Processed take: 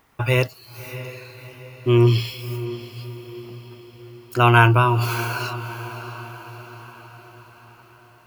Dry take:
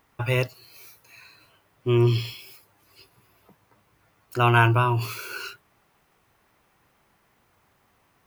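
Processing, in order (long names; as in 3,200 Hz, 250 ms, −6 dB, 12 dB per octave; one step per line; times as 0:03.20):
feedback delay with all-pass diffusion 632 ms, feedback 54%, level −13 dB
level +4.5 dB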